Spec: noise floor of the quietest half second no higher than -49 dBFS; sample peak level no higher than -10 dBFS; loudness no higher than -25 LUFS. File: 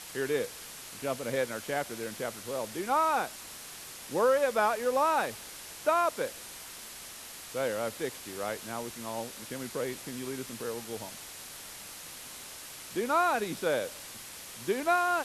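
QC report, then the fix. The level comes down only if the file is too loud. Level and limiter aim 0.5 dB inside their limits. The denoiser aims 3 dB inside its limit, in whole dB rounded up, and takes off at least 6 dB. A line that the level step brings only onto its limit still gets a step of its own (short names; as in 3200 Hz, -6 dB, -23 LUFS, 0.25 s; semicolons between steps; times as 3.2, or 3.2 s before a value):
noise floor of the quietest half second -45 dBFS: fail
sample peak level -14.0 dBFS: OK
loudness -32.5 LUFS: OK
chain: denoiser 7 dB, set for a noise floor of -45 dBFS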